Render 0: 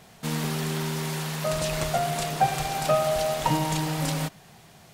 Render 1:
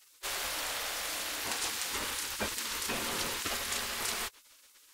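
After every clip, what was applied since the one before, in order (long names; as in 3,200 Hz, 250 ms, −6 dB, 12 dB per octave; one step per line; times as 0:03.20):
gate on every frequency bin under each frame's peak −20 dB weak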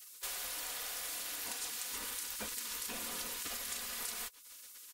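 high-shelf EQ 7,200 Hz +11.5 dB
comb filter 4.1 ms, depth 45%
downward compressor 3 to 1, threshold −42 dBFS, peak gain reduction 13 dB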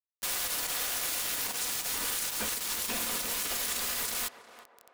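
brickwall limiter −31 dBFS, peak gain reduction 10 dB
bit reduction 7 bits
feedback echo with a band-pass in the loop 360 ms, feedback 49%, band-pass 680 Hz, level −9.5 dB
level +8.5 dB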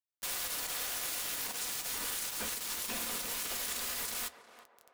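flanger 0.65 Hz, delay 3.7 ms, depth 9.3 ms, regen −76%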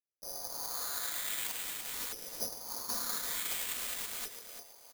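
auto-filter low-pass saw up 0.47 Hz 430–6,100 Hz
repeating echo 337 ms, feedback 26%, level −10 dB
bad sample-rate conversion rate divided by 8×, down filtered, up zero stuff
level −5 dB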